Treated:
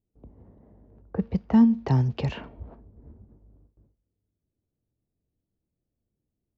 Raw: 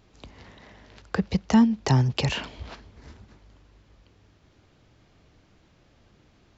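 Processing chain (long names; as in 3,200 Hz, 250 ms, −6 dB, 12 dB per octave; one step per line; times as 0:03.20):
low-pass that shuts in the quiet parts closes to 480 Hz, open at −17 dBFS
noise gate with hold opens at −48 dBFS
tilt shelving filter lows +5 dB, about 1,100 Hz
tuned comb filter 230 Hz, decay 0.34 s, harmonics all, mix 40%
level −2 dB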